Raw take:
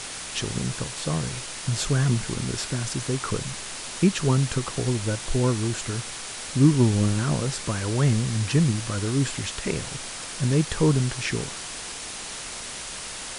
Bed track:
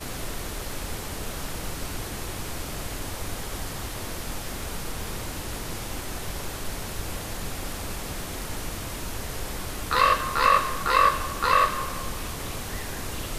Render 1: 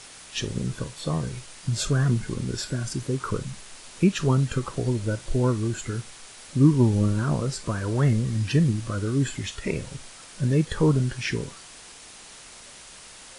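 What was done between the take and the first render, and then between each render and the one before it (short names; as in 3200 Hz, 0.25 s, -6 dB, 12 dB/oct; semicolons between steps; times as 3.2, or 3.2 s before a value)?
noise print and reduce 10 dB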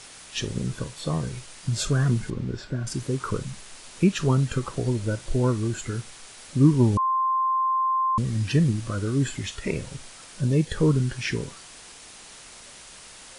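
2.3–2.87 tape spacing loss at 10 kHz 23 dB; 6.97–8.18 bleep 1050 Hz -20 dBFS; 10.41–11.09 bell 2100 Hz -> 510 Hz -11.5 dB 0.34 oct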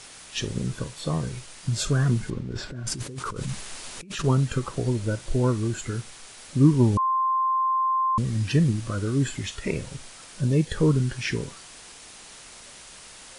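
2.39–4.24 negative-ratio compressor -34 dBFS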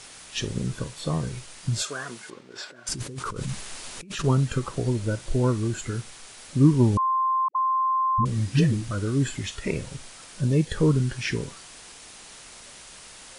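1.82–2.89 HPF 580 Hz; 7.48–8.91 dispersion highs, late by 77 ms, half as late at 360 Hz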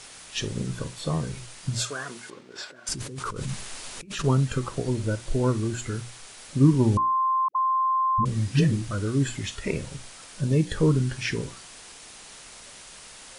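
notches 60/120/180/240/300/360 Hz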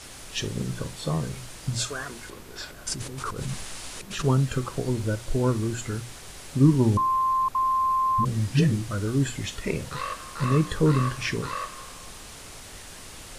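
add bed track -13 dB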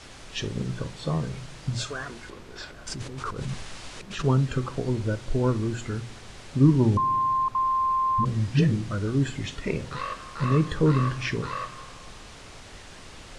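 air absorption 84 m; darkening echo 70 ms, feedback 79%, low-pass 820 Hz, level -21 dB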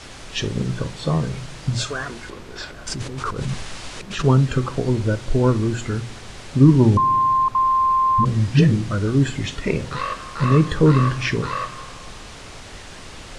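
gain +6.5 dB; limiter -2 dBFS, peak gain reduction 1.5 dB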